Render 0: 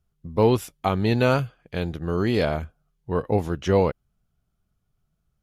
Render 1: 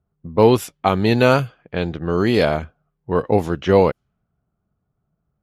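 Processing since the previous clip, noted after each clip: level-controlled noise filter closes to 1.1 kHz, open at -18 dBFS; high-pass 140 Hz 6 dB/octave; trim +6.5 dB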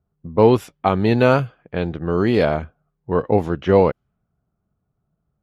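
treble shelf 3.9 kHz -12 dB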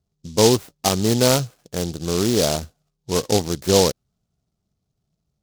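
delay time shaken by noise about 4.9 kHz, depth 0.14 ms; trim -2 dB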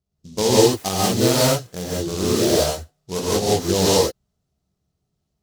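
gated-style reverb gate 210 ms rising, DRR -7.5 dB; trim -6.5 dB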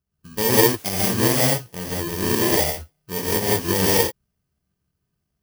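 bit-reversed sample order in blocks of 32 samples; trim -1.5 dB

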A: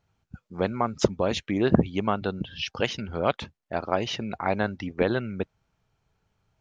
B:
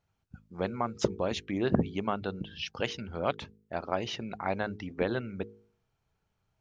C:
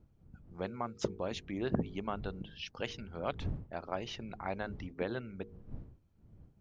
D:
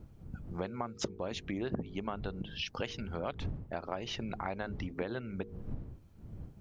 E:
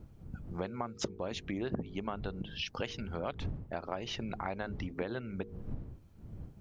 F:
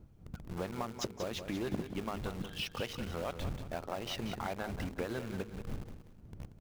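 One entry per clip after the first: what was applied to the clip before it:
de-hum 52.53 Hz, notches 9; trim -5.5 dB
wind noise 120 Hz -42 dBFS; trim -6.5 dB
compression 4:1, threshold -47 dBFS, peak gain reduction 18 dB; trim +11.5 dB
no audible change
in parallel at -12 dB: companded quantiser 2-bit; on the sum: feedback delay 184 ms, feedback 34%, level -9.5 dB; trim -4.5 dB

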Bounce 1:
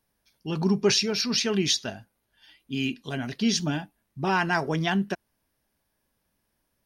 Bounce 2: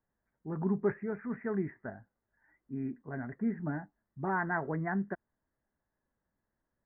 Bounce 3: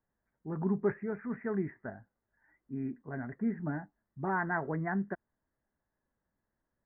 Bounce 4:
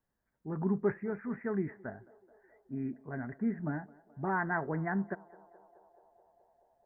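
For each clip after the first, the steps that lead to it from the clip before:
steep low-pass 2 kHz 96 dB/octave; trim -7.5 dB
no audible change
band-passed feedback delay 214 ms, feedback 83%, band-pass 640 Hz, level -20.5 dB

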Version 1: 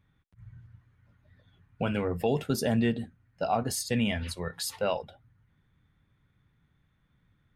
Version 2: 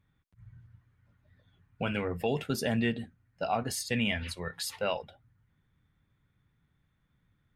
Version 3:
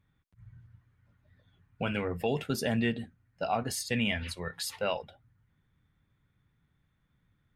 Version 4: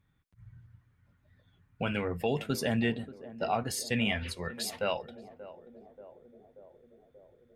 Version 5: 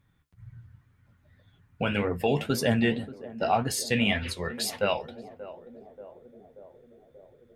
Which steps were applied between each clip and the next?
dynamic bell 2.3 kHz, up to +7 dB, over -49 dBFS, Q 1; trim -3.5 dB
no audible change
band-passed feedback delay 583 ms, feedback 73%, band-pass 410 Hz, level -14 dB
flange 1.9 Hz, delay 6.5 ms, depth 8.4 ms, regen +60%; trim +9 dB

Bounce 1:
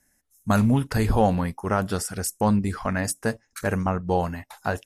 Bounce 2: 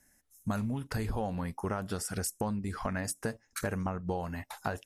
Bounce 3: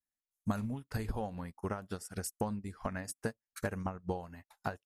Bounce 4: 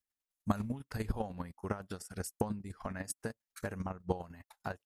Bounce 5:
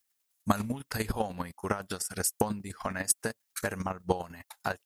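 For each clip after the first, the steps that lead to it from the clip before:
compression 10:1, threshold -30 dBFS, peak gain reduction 15.5 dB
upward expansion 2.5:1, over -51 dBFS; trim +1.5 dB
square tremolo 10 Hz, depth 60%, duty 20%; trim +4.5 dB
tilt EQ +2 dB/octave; trim +8.5 dB

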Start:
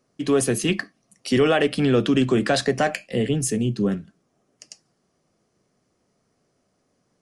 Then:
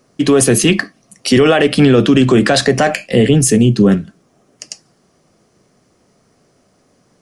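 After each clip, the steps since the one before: loudness maximiser +14.5 dB; trim -1 dB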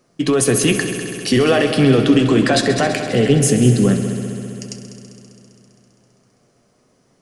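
flange 0.38 Hz, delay 5.6 ms, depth 3.1 ms, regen +69%; on a send: multi-head delay 66 ms, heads all three, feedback 74%, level -15.5 dB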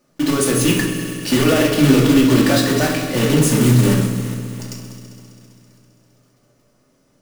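block-companded coder 3-bit; simulated room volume 710 m³, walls furnished, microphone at 2.5 m; trim -5 dB

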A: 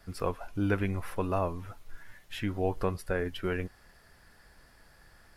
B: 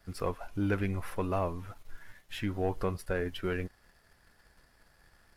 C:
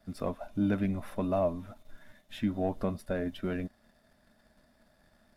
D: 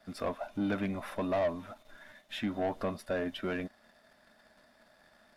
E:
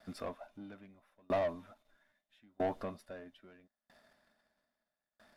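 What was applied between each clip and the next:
waveshaping leveller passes 1; trim -4.5 dB
small resonant body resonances 230/610/3600 Hz, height 16 dB, ringing for 45 ms; trim -5.5 dB
overdrive pedal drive 17 dB, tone 4.6 kHz, clips at -17.5 dBFS; trim -4.5 dB
sawtooth tremolo in dB decaying 0.77 Hz, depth 35 dB

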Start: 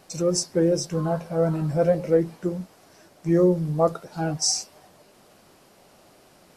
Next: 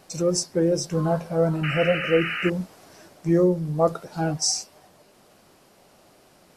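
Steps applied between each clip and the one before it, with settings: gain riding within 4 dB 0.5 s; painted sound noise, 1.63–2.50 s, 1.2–3 kHz -29 dBFS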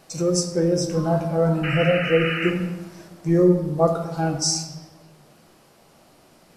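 reverberation RT60 1.3 s, pre-delay 6 ms, DRR 4 dB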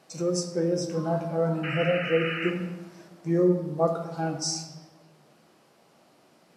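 high-pass 150 Hz 12 dB/octave; treble shelf 8.2 kHz -8 dB; trim -5 dB

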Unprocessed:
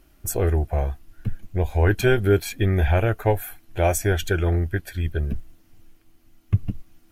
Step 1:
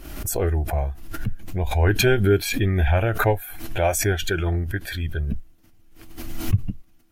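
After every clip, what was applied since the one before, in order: spectral noise reduction 6 dB; swell ahead of each attack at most 53 dB/s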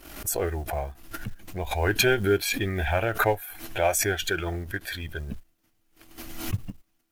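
companding laws mixed up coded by A; bass shelf 260 Hz -10.5 dB

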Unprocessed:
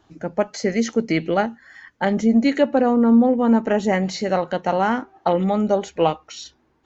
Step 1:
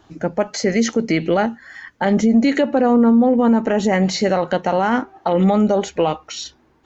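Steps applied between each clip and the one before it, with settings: peak limiter -14 dBFS, peak gain reduction 9.5 dB; trim +6.5 dB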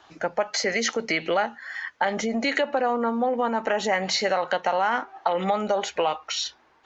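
three-band isolator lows -18 dB, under 570 Hz, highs -13 dB, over 6.4 kHz; compression 2.5:1, threshold -25 dBFS, peak gain reduction 6.5 dB; trim +3.5 dB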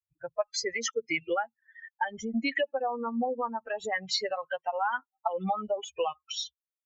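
expander on every frequency bin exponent 3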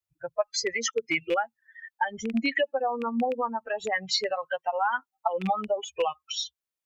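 rattle on loud lows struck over -39 dBFS, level -28 dBFS; trim +3 dB

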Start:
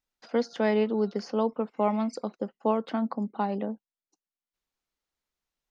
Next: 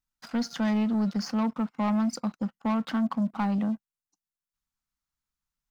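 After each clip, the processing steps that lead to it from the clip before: FFT filter 160 Hz 0 dB, 270 Hz -7 dB, 410 Hz -22 dB, 890 Hz -8 dB, 1.3 kHz -4 dB, 2.1 kHz -9 dB, 3.3 kHz -9 dB, 7.4 kHz -4 dB; waveshaping leveller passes 2; in parallel at +2 dB: peak limiter -34.5 dBFS, peak gain reduction 12 dB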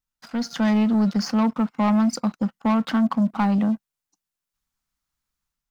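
level rider gain up to 6.5 dB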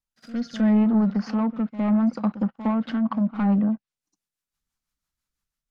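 rotary cabinet horn 0.75 Hz, later 6 Hz, at 2.86 s; pre-echo 61 ms -14 dB; low-pass that closes with the level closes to 1.7 kHz, closed at -19.5 dBFS

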